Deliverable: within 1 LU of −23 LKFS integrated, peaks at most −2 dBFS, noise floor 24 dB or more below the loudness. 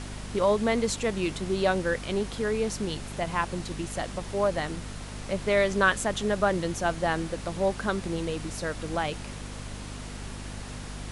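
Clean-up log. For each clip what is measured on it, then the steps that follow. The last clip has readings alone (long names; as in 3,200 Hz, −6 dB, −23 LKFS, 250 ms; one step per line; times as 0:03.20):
mains hum 50 Hz; hum harmonics up to 250 Hz; level of the hum −38 dBFS; background noise floor −39 dBFS; target noise floor −53 dBFS; integrated loudness −28.5 LKFS; sample peak −10.0 dBFS; target loudness −23.0 LKFS
→ hum removal 50 Hz, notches 5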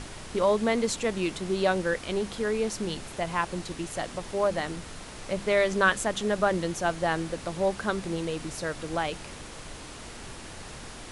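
mains hum none found; background noise floor −43 dBFS; target noise floor −53 dBFS
→ noise reduction from a noise print 10 dB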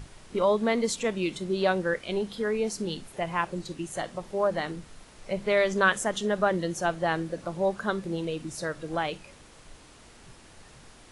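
background noise floor −52 dBFS; target noise floor −53 dBFS
→ noise reduction from a noise print 6 dB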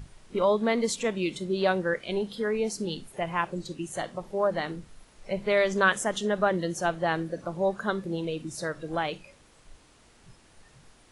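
background noise floor −58 dBFS; integrated loudness −28.5 LKFS; sample peak −10.0 dBFS; target loudness −23.0 LKFS
→ level +5.5 dB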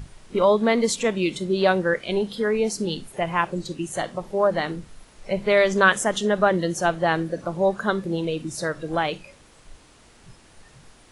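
integrated loudness −23.0 LKFS; sample peak −4.5 dBFS; background noise floor −53 dBFS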